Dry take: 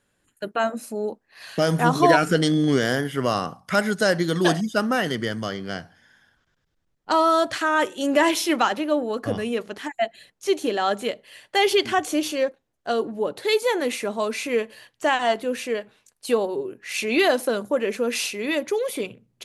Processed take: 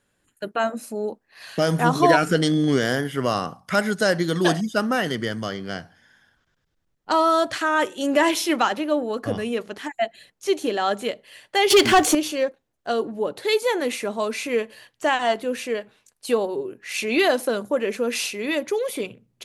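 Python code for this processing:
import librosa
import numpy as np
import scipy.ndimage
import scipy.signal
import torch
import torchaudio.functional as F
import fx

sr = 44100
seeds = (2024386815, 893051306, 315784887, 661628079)

y = fx.leveller(x, sr, passes=3, at=(11.7, 12.15))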